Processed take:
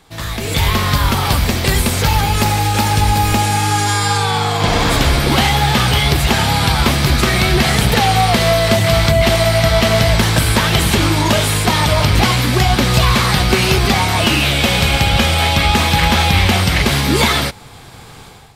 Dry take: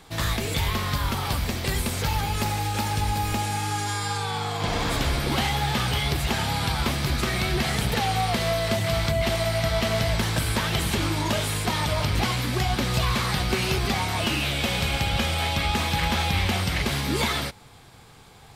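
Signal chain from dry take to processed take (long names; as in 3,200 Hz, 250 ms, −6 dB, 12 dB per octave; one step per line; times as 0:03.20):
automatic gain control gain up to 14 dB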